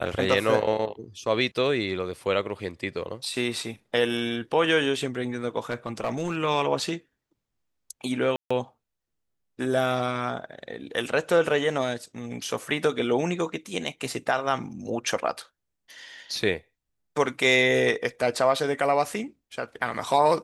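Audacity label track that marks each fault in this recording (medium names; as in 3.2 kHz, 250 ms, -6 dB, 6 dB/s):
5.700000	6.370000	clipped -22 dBFS
8.360000	8.510000	dropout 145 ms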